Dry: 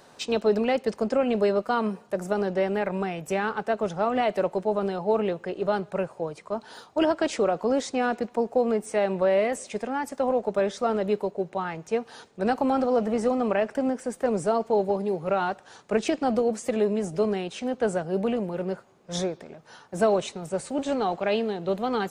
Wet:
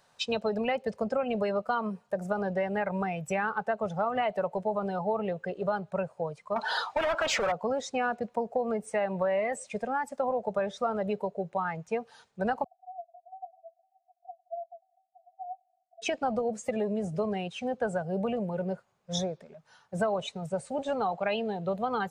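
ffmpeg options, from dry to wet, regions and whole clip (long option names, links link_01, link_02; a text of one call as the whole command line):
ffmpeg -i in.wav -filter_complex "[0:a]asettb=1/sr,asplit=3[link_01][link_02][link_03];[link_01]atrim=end=6.564[link_04];[link_02]atrim=start=6.56:end=7.52,asetpts=PTS-STARTPTS,afade=type=in:duration=0.004:curve=qsin,afade=type=out:start_time=0.956:duration=0.004:curve=qsin,asoftclip=type=hard:threshold=-22.5dB,asplit=2[link_05][link_06];[link_06]highpass=frequency=720:poles=1,volume=24dB,asoftclip=type=tanh:threshold=-17dB[link_07];[link_05][link_07]amix=inputs=2:normalize=0,lowpass=frequency=4700:poles=1,volume=-6dB[link_08];[link_03]atrim=start=7.516[link_09];[link_04][link_08]acrossfade=duration=0.004:curve1=hsin:curve2=qsin[link_10];[link_10][link_09]acrossfade=duration=0.004:curve1=qsin:curve2=hsin,asettb=1/sr,asplit=3[link_11][link_12][link_13];[link_11]atrim=end=12.644[link_14];[link_12]atrim=start=12.64:end=16.02,asetpts=PTS-STARTPTS,afade=type=in:duration=0.004:curve=qsin,afade=type=out:start_time=3.376:duration=0.004:curve=qsin,acompressor=threshold=-32dB:ratio=4:attack=3.2:release=140:knee=1:detection=peak,asuperpass=centerf=710:order=20:qfactor=6.8[link_15];[link_13]atrim=start=16.016[link_16];[link_14][link_15]acrossfade=duration=0.004:curve1=hsin:curve2=qsin[link_17];[link_17][link_16]acrossfade=duration=0.004:curve1=qsin:curve2=hsin,afftdn=noise_reduction=15:noise_floor=-32,equalizer=frequency=320:width_type=o:width=1:gain=-15,acompressor=threshold=-32dB:ratio=3,volume=5dB" out.wav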